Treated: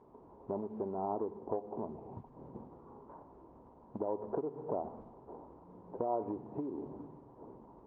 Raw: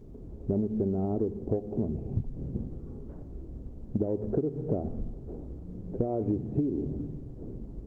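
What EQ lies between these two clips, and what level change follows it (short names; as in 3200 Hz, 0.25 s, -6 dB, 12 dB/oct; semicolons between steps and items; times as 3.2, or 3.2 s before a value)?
band-pass 970 Hz, Q 7.7; +16.5 dB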